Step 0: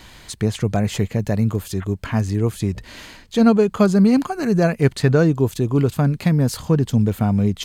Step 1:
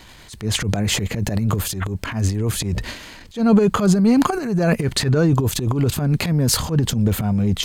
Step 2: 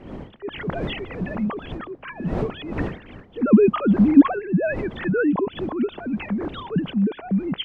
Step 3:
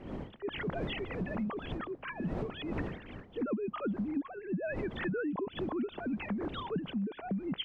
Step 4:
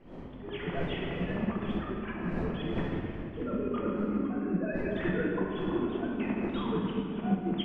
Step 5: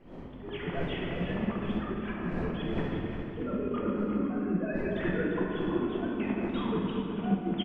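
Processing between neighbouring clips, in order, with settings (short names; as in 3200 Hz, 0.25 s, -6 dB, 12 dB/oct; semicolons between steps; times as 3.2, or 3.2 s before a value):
transient shaper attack -10 dB, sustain +12 dB; gain -1 dB
sine-wave speech; wind noise 340 Hz -32 dBFS; gain -3 dB
compressor 20:1, threshold -26 dBFS, peak gain reduction 22 dB; gain -5 dB
reverb RT60 3.3 s, pre-delay 6 ms, DRR -4.5 dB; upward expander 1.5:1, over -42 dBFS
echo 0.35 s -9 dB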